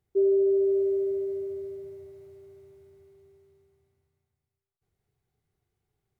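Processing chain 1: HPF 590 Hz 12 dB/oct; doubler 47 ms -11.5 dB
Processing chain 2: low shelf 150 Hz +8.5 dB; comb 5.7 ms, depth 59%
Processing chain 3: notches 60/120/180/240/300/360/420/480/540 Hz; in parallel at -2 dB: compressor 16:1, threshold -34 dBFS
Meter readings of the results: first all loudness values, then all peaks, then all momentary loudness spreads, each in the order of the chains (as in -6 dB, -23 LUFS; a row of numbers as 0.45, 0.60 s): -35.5, -23.0, -24.5 LUFS; -25.0, -14.5, -15.5 dBFS; 18, 17, 20 LU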